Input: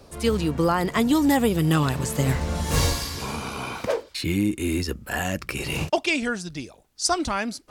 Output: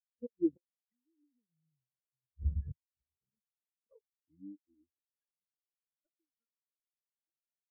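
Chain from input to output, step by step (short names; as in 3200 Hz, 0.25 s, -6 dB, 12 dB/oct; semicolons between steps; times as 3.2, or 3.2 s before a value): minimum comb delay 0.55 ms; Doppler pass-by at 1.64, 16 m/s, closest 4.4 m; sample leveller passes 3; low shelf 73 Hz -8 dB; flipped gate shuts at -16 dBFS, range -25 dB; LPF 2700 Hz; bell 170 Hz -3 dB 0.33 oct; spectral expander 4:1; gain -3.5 dB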